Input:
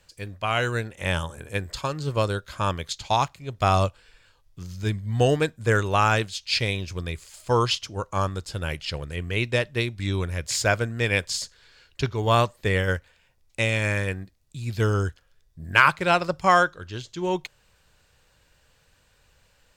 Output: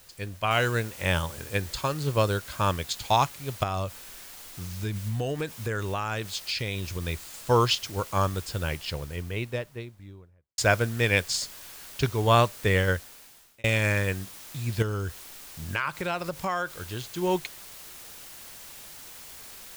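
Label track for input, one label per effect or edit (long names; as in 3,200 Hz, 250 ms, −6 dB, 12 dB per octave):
0.510000	0.510000	noise floor change −55 dB −45 dB
3.630000	7.050000	downward compressor, threshold −26 dBFS
8.390000	10.580000	fade out and dull
12.850000	13.640000	fade out
14.820000	17.120000	downward compressor 3 to 1, threshold −28 dBFS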